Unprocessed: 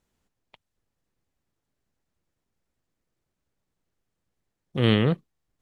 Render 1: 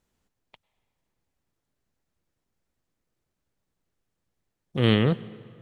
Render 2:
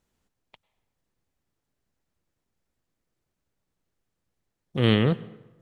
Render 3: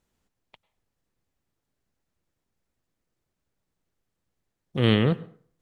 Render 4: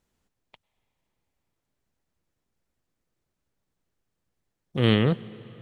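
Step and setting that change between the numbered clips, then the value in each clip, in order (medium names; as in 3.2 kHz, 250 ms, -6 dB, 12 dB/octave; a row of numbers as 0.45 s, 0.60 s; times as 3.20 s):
plate-style reverb, RT60: 2.3 s, 1.1 s, 0.51 s, 4.9 s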